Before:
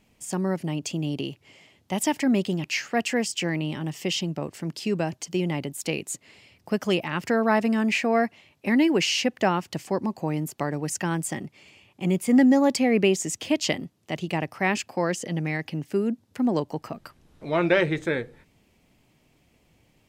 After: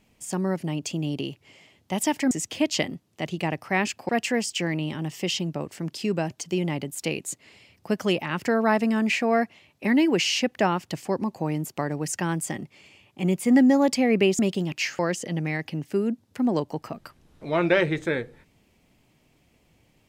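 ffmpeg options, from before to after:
ffmpeg -i in.wav -filter_complex "[0:a]asplit=5[link_01][link_02][link_03][link_04][link_05];[link_01]atrim=end=2.312[link_06];[link_02]atrim=start=13.208:end=14.992[link_07];[link_03]atrim=start=2.908:end=13.212[link_08];[link_04]atrim=start=2.308:end=2.912[link_09];[link_05]atrim=start=14.988[link_10];[link_06][link_07]acrossfade=duration=0.004:curve1=hsin:curve2=hsin[link_11];[link_11][link_08]acrossfade=duration=0.004:curve1=hsin:curve2=hsin[link_12];[link_12][link_09]acrossfade=duration=0.004:curve1=hsin:curve2=hsin[link_13];[link_13][link_10]acrossfade=duration=0.004:curve1=hsin:curve2=hsin" out.wav

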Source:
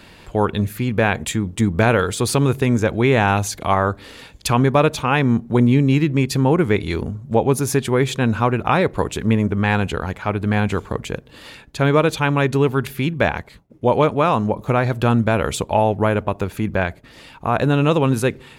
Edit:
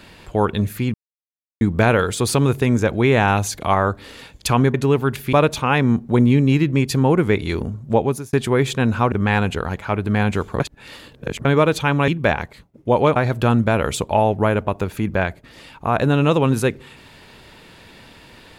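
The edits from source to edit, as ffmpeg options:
ffmpeg -i in.wav -filter_complex "[0:a]asplit=11[link_01][link_02][link_03][link_04][link_05][link_06][link_07][link_08][link_09][link_10][link_11];[link_01]atrim=end=0.94,asetpts=PTS-STARTPTS,afade=type=out:start_time=0.936:duration=0.004:curve=hsin[link_12];[link_02]atrim=start=0.94:end=1.61,asetpts=PTS-STARTPTS,volume=0[link_13];[link_03]atrim=start=1.61:end=4.742,asetpts=PTS-STARTPTS,afade=type=in:duration=0.004:curve=hsin[link_14];[link_04]atrim=start=12.448:end=13.042[link_15];[link_05]atrim=start=4.738:end=7.74,asetpts=PTS-STARTPTS,afade=type=out:start_time=2.652:duration=0.35[link_16];[link_06]atrim=start=7.74:end=8.532,asetpts=PTS-STARTPTS,afade=type=in:duration=0.004:curve=hsin[link_17];[link_07]atrim=start=9.488:end=10.972[link_18];[link_08]atrim=start=10.968:end=11.822,asetpts=PTS-STARTPTS,areverse[link_19];[link_09]atrim=start=11.818:end=12.452[link_20];[link_10]atrim=start=13.038:end=14.122[link_21];[link_11]atrim=start=14.758[link_22];[link_12][link_13][link_14]concat=n=3:v=0:a=1[link_23];[link_23][link_15]acrossfade=duration=0.004:curve1=hsin:curve2=hsin[link_24];[link_16][link_17]concat=n=2:v=0:a=1[link_25];[link_24][link_25]acrossfade=duration=0.004:curve1=hsin:curve2=hsin[link_26];[link_26][link_18]acrossfade=duration=0.004:curve1=hsin:curve2=hsin[link_27];[link_27][link_19]acrossfade=duration=0.004:curve1=hsin:curve2=hsin[link_28];[link_28][link_20]acrossfade=duration=0.004:curve1=hsin:curve2=hsin[link_29];[link_29][link_21]acrossfade=duration=0.004:curve1=hsin:curve2=hsin[link_30];[link_30][link_22]acrossfade=duration=0.004:curve1=hsin:curve2=hsin" out.wav

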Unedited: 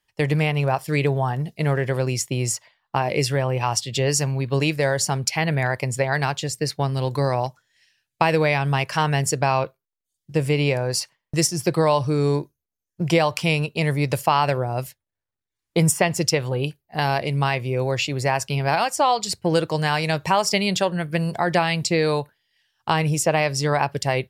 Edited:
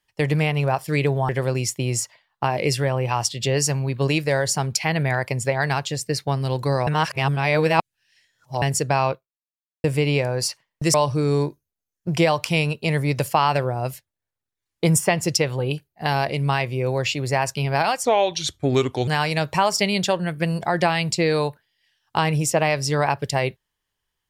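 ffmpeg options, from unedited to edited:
ffmpeg -i in.wav -filter_complex "[0:a]asplit=8[link_01][link_02][link_03][link_04][link_05][link_06][link_07][link_08];[link_01]atrim=end=1.292[link_09];[link_02]atrim=start=1.808:end=7.392[link_10];[link_03]atrim=start=7.388:end=9.142,asetpts=PTS-STARTPTS,areverse[link_11];[link_04]atrim=start=9.138:end=10.36,asetpts=PTS-STARTPTS,afade=type=out:start_time=0.502:duration=0.72:curve=exp[link_12];[link_05]atrim=start=10.36:end=11.462,asetpts=PTS-STARTPTS,afade=type=in:duration=0.004:curve=hsin[link_13];[link_06]atrim=start=11.868:end=18.984[link_14];[link_07]atrim=start=18.98:end=19.8,asetpts=PTS-STARTPTS,asetrate=35280,aresample=44100,atrim=end_sample=45202,asetpts=PTS-STARTPTS[link_15];[link_08]atrim=start=19.796[link_16];[link_09][link_10]acrossfade=duration=0.004:curve1=hsin:curve2=hsin[link_17];[link_17][link_11]acrossfade=duration=0.004:curve1=hsin:curve2=hsin[link_18];[link_12][link_13]concat=n=2:v=0:a=1[link_19];[link_18][link_19]acrossfade=duration=0.004:curve1=hsin:curve2=hsin[link_20];[link_20][link_14]acrossfade=duration=0.004:curve1=hsin:curve2=hsin[link_21];[link_21][link_15]acrossfade=duration=0.004:curve1=hsin:curve2=hsin[link_22];[link_22][link_16]acrossfade=duration=0.004:curve1=hsin:curve2=hsin" out.wav

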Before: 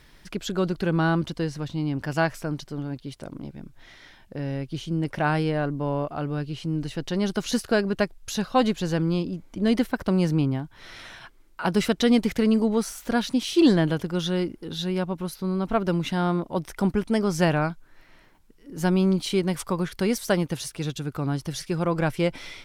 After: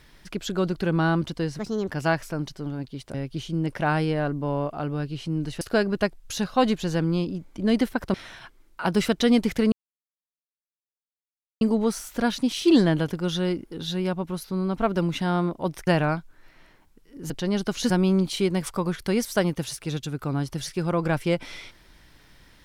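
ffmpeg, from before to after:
ffmpeg -i in.wav -filter_complex "[0:a]asplit=10[link_01][link_02][link_03][link_04][link_05][link_06][link_07][link_08][link_09][link_10];[link_01]atrim=end=1.594[link_11];[link_02]atrim=start=1.59:end=2,asetpts=PTS-STARTPTS,asetrate=62181,aresample=44100,atrim=end_sample=12823,asetpts=PTS-STARTPTS[link_12];[link_03]atrim=start=1.996:end=3.262[link_13];[link_04]atrim=start=4.518:end=6.992[link_14];[link_05]atrim=start=7.588:end=10.122[link_15];[link_06]atrim=start=10.938:end=12.52,asetpts=PTS-STARTPTS,afade=type=out:start_time=1.578:duration=0.004:curve=hsin,apad=pad_dur=1.89[link_16];[link_07]atrim=start=12.52:end=16.782,asetpts=PTS-STARTPTS,afade=type=in:duration=0.004:curve=hsin[link_17];[link_08]atrim=start=17.398:end=18.832[link_18];[link_09]atrim=start=6.988:end=7.592[link_19];[link_10]atrim=start=18.828[link_20];[link_11][link_12]acrossfade=duration=0.004:curve1=hsin:curve2=hsin[link_21];[link_21][link_13]acrossfade=duration=0.004:curve1=hsin:curve2=hsin[link_22];[link_22][link_14]acrossfade=duration=0.004:curve1=hsin:curve2=hsin[link_23];[link_23][link_15]acrossfade=duration=0.004:curve1=hsin:curve2=hsin[link_24];[link_16][link_17]concat=n=2:v=0:a=1[link_25];[link_24][link_25]acrossfade=duration=0.004:curve1=hsin:curve2=hsin[link_26];[link_26][link_18]acrossfade=duration=0.004:curve1=hsin:curve2=hsin[link_27];[link_27][link_19]acrossfade=duration=0.004:curve1=hsin:curve2=hsin[link_28];[link_28][link_20]acrossfade=duration=0.004:curve1=hsin:curve2=hsin" out.wav

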